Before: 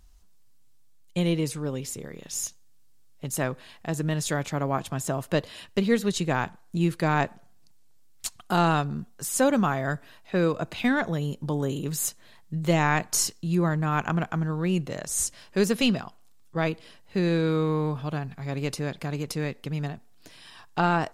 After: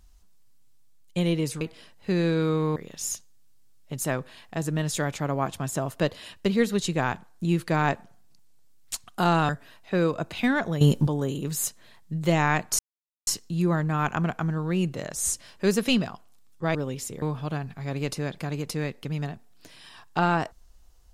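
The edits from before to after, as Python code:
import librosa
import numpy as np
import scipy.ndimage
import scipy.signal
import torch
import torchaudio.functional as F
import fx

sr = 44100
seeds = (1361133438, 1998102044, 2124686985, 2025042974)

y = fx.edit(x, sr, fx.swap(start_s=1.61, length_s=0.47, other_s=16.68, other_length_s=1.15),
    fx.cut(start_s=8.81, length_s=1.09),
    fx.clip_gain(start_s=11.22, length_s=0.26, db=12.0),
    fx.insert_silence(at_s=13.2, length_s=0.48), tone=tone)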